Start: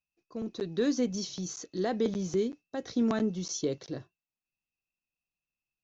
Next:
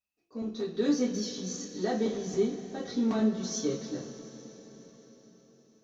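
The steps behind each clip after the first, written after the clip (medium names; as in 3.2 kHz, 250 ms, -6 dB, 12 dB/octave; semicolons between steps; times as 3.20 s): in parallel at -11 dB: saturation -31.5 dBFS, distortion -8 dB; on the sum: two-slope reverb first 0.27 s, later 5 s, from -20 dB, DRR -7 dB; trim -9 dB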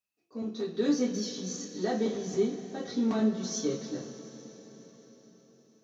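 high-pass 93 Hz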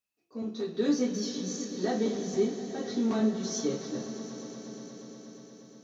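echo with a slow build-up 119 ms, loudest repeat 5, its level -18 dB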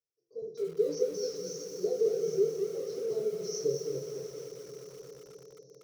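FFT filter 100 Hz 0 dB, 160 Hz +10 dB, 230 Hz -26 dB, 330 Hz +1 dB, 470 Hz +15 dB, 740 Hz -12 dB, 1.6 kHz -24 dB, 3.1 kHz -25 dB, 5.5 kHz +8 dB, 8.1 kHz -13 dB; bit-crushed delay 217 ms, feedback 35%, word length 7-bit, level -6 dB; trim -8 dB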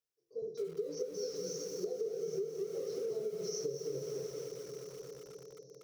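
compression 10:1, threshold -34 dBFS, peak gain reduction 13 dB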